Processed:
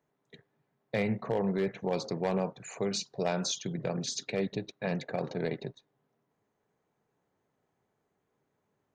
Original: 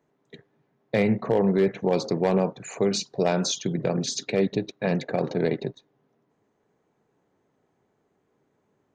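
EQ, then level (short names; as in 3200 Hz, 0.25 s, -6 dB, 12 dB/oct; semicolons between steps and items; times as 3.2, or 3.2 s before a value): bell 310 Hz -5 dB 1.4 oct; -5.5 dB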